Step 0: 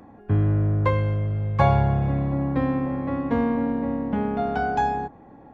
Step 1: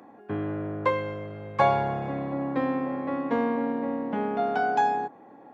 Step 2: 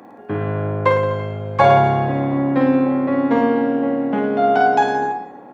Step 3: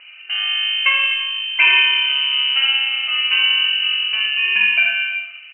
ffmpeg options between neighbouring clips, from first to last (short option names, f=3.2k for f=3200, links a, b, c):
-af "highpass=290"
-af "aecho=1:1:50|107.5|173.6|249.7|337.1:0.631|0.398|0.251|0.158|0.1,volume=7.5dB"
-af "aecho=1:1:22|78:0.473|0.596,lowpass=f=2.7k:t=q:w=0.5098,lowpass=f=2.7k:t=q:w=0.6013,lowpass=f=2.7k:t=q:w=0.9,lowpass=f=2.7k:t=q:w=2.563,afreqshift=-3200,volume=-1dB"